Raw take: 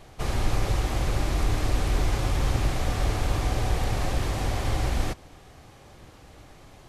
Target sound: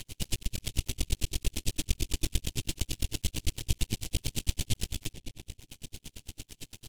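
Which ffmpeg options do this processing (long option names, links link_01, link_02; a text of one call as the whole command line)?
ffmpeg -i in.wav -filter_complex "[0:a]asplit=2[link_01][link_02];[link_02]acompressor=threshold=-33dB:ratio=6,volume=1dB[link_03];[link_01][link_03]amix=inputs=2:normalize=0,highshelf=frequency=2000:width_type=q:width=3:gain=12.5,asplit=2[link_04][link_05];[link_05]adelay=287,lowpass=frequency=2000:poles=1,volume=-8dB,asplit=2[link_06][link_07];[link_07]adelay=287,lowpass=frequency=2000:poles=1,volume=0.51,asplit=2[link_08][link_09];[link_09]adelay=287,lowpass=frequency=2000:poles=1,volume=0.51,asplit=2[link_10][link_11];[link_11]adelay=287,lowpass=frequency=2000:poles=1,volume=0.51,asplit=2[link_12][link_13];[link_13]adelay=287,lowpass=frequency=2000:poles=1,volume=0.51,asplit=2[link_14][link_15];[link_15]adelay=287,lowpass=frequency=2000:poles=1,volume=0.51[link_16];[link_04][link_06][link_08][link_10][link_12][link_14][link_16]amix=inputs=7:normalize=0,acompressor=mode=upward:threshold=-23dB:ratio=2.5,firequalizer=gain_entry='entry(270,0);entry(670,-16);entry(7800,-1)':delay=0.05:min_phase=1,aeval=exprs='max(val(0),0)':channel_layout=same,bandreject=frequency=1200:width=7.6,aeval=exprs='val(0)*pow(10,-39*(0.5-0.5*cos(2*PI*8.9*n/s))/20)':channel_layout=same" out.wav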